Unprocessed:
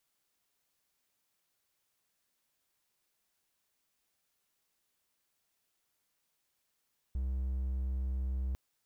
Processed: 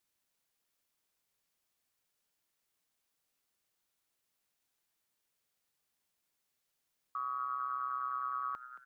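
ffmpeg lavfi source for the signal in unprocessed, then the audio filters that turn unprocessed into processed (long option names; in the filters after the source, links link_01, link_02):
-f lavfi -i "aevalsrc='0.0335*(1-4*abs(mod(64.8*t+0.25,1)-0.5))':duration=1.4:sample_rate=44100"
-filter_complex "[0:a]aeval=exprs='val(0)*sin(2*PI*1200*n/s)':channel_layout=same,asplit=5[link_01][link_02][link_03][link_04][link_05];[link_02]adelay=224,afreqshift=120,volume=-13.5dB[link_06];[link_03]adelay=448,afreqshift=240,volume=-22.1dB[link_07];[link_04]adelay=672,afreqshift=360,volume=-30.8dB[link_08];[link_05]adelay=896,afreqshift=480,volume=-39.4dB[link_09];[link_01][link_06][link_07][link_08][link_09]amix=inputs=5:normalize=0"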